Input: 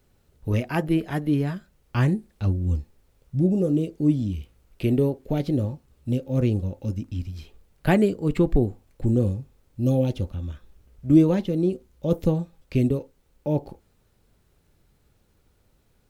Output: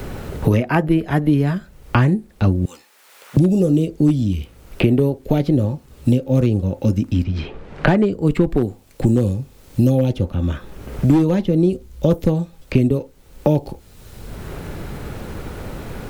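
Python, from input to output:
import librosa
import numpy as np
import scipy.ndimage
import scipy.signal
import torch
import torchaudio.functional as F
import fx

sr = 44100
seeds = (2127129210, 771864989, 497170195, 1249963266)

y = fx.lowpass(x, sr, hz=fx.line((7.23, 3500.0), (8.11, 5900.0)), slope=12, at=(7.23, 8.11), fade=0.02)
y = np.clip(10.0 ** (12.0 / 20.0) * y, -1.0, 1.0) / 10.0 ** (12.0 / 20.0)
y = fx.highpass(y, sr, hz=1200.0, slope=12, at=(2.65, 3.37))
y = fx.band_squash(y, sr, depth_pct=100)
y = F.gain(torch.from_numpy(y), 6.0).numpy()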